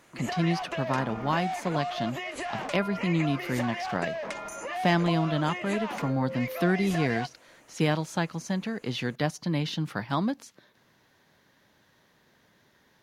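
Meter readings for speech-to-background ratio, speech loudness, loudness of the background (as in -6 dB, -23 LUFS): 5.0 dB, -29.5 LUFS, -34.5 LUFS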